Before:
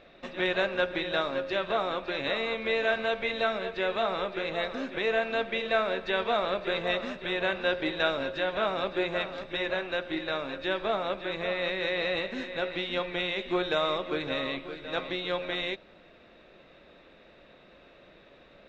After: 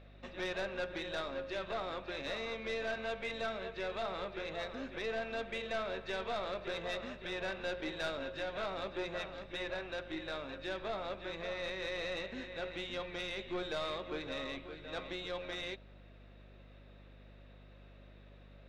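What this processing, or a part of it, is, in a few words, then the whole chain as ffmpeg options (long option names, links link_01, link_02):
valve amplifier with mains hum: -af "aeval=exprs='(tanh(14.1*val(0)+0.25)-tanh(0.25))/14.1':channel_layout=same,aeval=exprs='val(0)+0.00398*(sin(2*PI*50*n/s)+sin(2*PI*2*50*n/s)/2+sin(2*PI*3*50*n/s)/3+sin(2*PI*4*50*n/s)/4+sin(2*PI*5*50*n/s)/5)':channel_layout=same,volume=-7.5dB"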